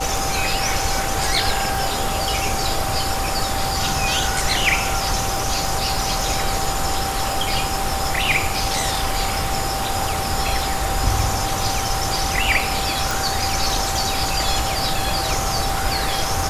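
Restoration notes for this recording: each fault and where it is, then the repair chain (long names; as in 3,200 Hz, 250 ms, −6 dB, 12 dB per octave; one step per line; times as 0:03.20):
surface crackle 28 per second −25 dBFS
whistle 780 Hz −26 dBFS
0:13.11: click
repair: click removal
notch filter 780 Hz, Q 30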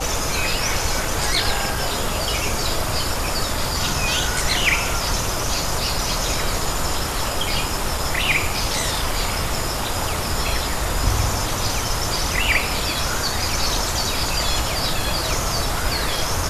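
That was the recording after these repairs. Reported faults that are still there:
none of them is left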